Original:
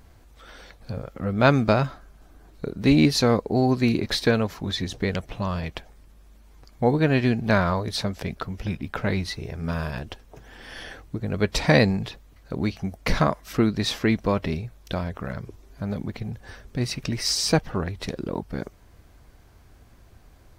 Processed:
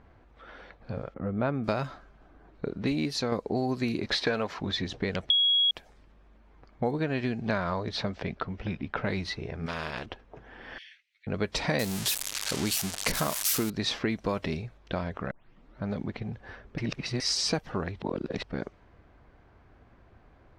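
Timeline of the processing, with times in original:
1.14–1.64 tape spacing loss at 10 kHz 42 dB
2.75–3.32 fade out, to -8 dB
4.13–4.6 overdrive pedal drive 12 dB, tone 2500 Hz, clips at -7 dBFS
5.3–5.71 bleep 3320 Hz -8 dBFS
6.91–9.07 air absorption 51 m
9.66–10.06 spectral compressor 2:1
10.78–11.27 steep high-pass 2100 Hz 48 dB/oct
11.79–13.7 switching spikes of -12 dBFS
14.24–14.78 high shelf 8000 Hz +10.5 dB
15.31 tape start 0.51 s
16.78–17.2 reverse
18.02–18.43 reverse
whole clip: low-pass opened by the level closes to 2000 Hz, open at -16 dBFS; compressor 5:1, threshold -24 dBFS; low shelf 130 Hz -8 dB

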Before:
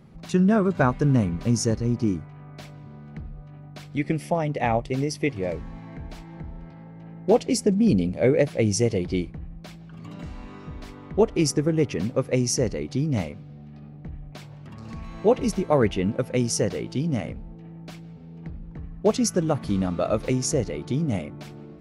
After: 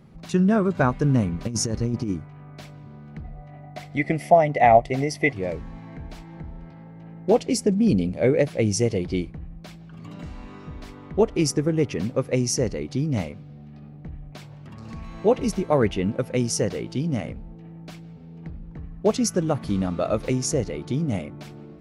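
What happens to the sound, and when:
1.45–2.1 negative-ratio compressor -24 dBFS, ratio -0.5
3.24–5.33 small resonant body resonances 690/2000 Hz, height 14 dB, ringing for 25 ms

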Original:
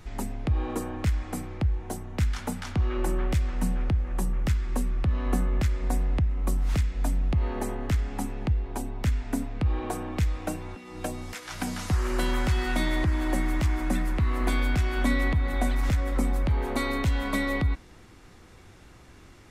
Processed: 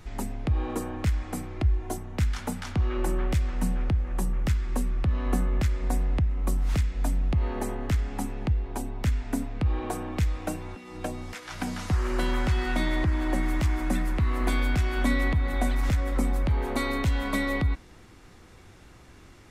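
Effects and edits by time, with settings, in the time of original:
1.56–1.98 comb 2.9 ms, depth 58%
10.97–13.43 high shelf 6300 Hz -7 dB

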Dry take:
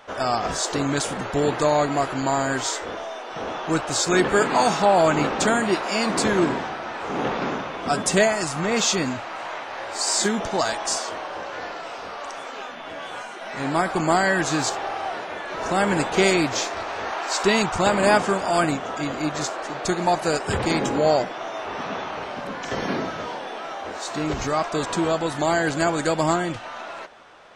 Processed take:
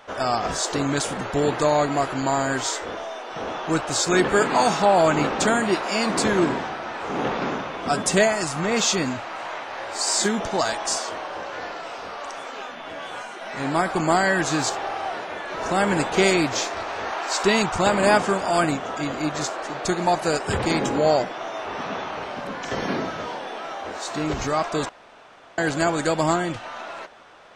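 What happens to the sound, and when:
24.89–25.58 room tone

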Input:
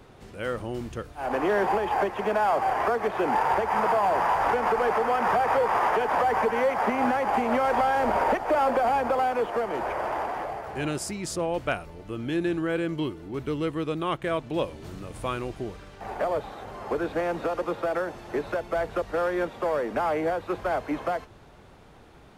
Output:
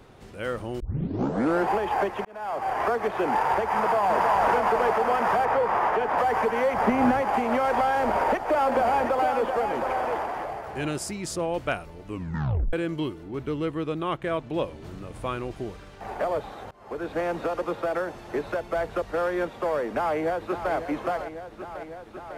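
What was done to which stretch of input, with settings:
0.8 tape start 0.89 s
2.25–2.84 fade in
3.77–4.26 echo throw 0.32 s, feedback 75%, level -3.5 dB
5.45–6.18 high shelf 4100 Hz -9.5 dB
6.73–7.22 low shelf 260 Hz +11 dB
8–10.18 echo 0.716 s -6.5 dB
12.07 tape stop 0.66 s
13.23–15.51 high shelf 4000 Hz -6 dB
16.71–17.21 fade in, from -24 dB
19.86–20.73 echo throw 0.55 s, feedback 80%, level -10 dB

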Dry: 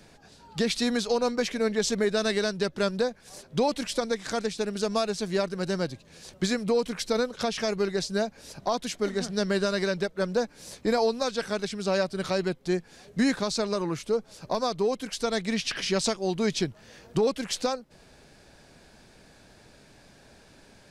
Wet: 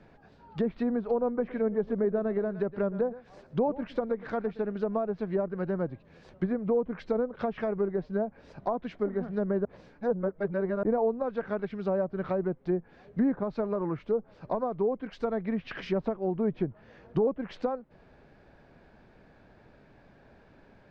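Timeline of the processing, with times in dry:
1.28–4.72 echo 0.116 s -17.5 dB
9.65–10.83 reverse
whole clip: LPF 1800 Hz 12 dB/oct; treble ducked by the level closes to 870 Hz, closed at -23 dBFS; gain -1.5 dB

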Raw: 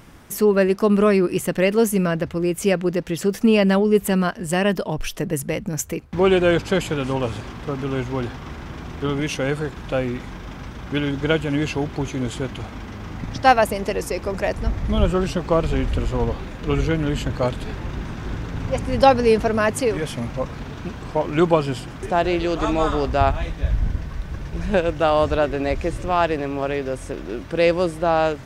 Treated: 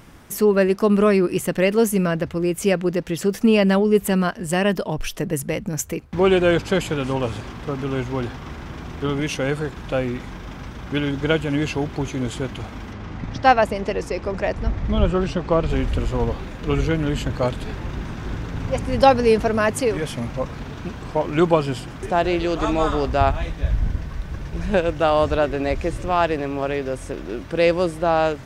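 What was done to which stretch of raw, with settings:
12.93–15.7 air absorption 76 m

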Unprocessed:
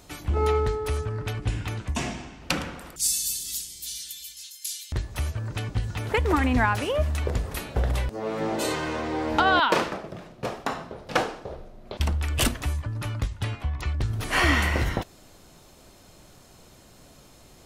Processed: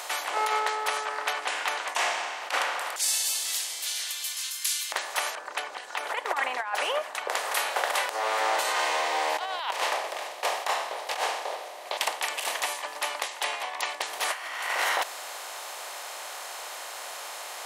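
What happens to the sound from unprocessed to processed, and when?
0.59–4.24 high shelf 6700 Hz -8.5 dB
5.35–7.3 formant sharpening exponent 1.5
8.8–14.25 bell 1400 Hz -13 dB 0.47 oct
whole clip: per-bin compression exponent 0.6; HPF 650 Hz 24 dB/oct; negative-ratio compressor -26 dBFS, ratio -0.5

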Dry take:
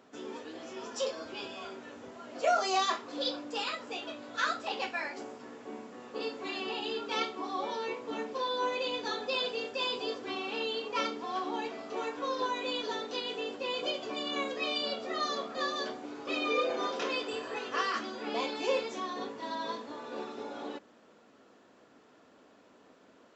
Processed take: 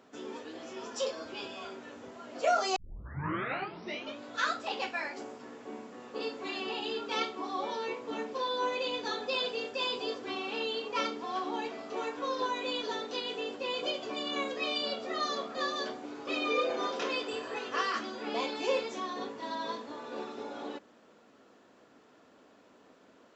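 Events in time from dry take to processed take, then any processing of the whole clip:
2.76 tape start 1.43 s

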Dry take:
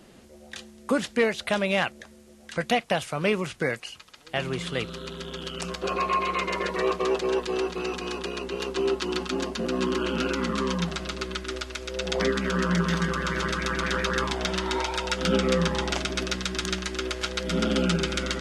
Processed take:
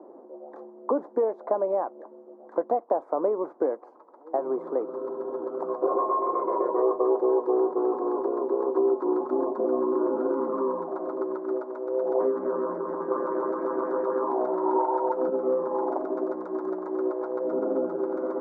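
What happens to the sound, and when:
13.11–15.3 gain +6.5 dB
whole clip: compressor, threshold -27 dBFS; elliptic band-pass 300–1000 Hz, stop band 50 dB; gain +9 dB

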